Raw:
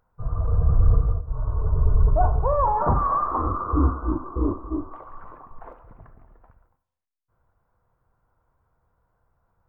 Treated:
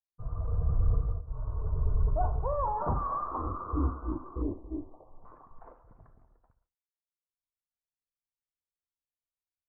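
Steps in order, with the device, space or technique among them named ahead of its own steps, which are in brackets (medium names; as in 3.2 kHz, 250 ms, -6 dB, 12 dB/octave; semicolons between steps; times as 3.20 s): hearing-loss simulation (low-pass 1.5 kHz 12 dB/octave; expander -47 dBFS); 4.42–5.25 s: steep low-pass 820 Hz 36 dB/octave; trim -9 dB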